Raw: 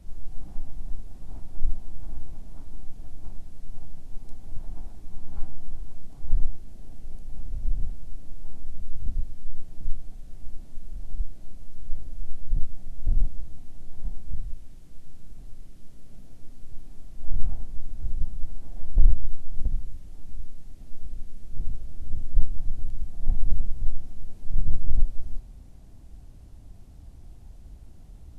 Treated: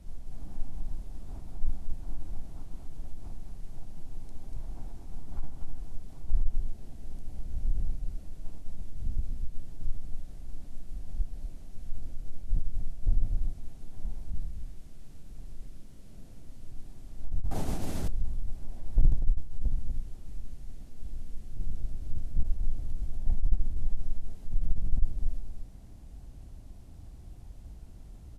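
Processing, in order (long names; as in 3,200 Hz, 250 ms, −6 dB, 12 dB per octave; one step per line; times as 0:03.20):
multi-tap delay 132/241 ms −11.5/−6 dB
harmonic generator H 5 −16 dB, 7 −30 dB, 8 −34 dB, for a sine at −2.5 dBFS
0:17.51–0:18.08: every bin compressed towards the loudest bin 2 to 1
level −5 dB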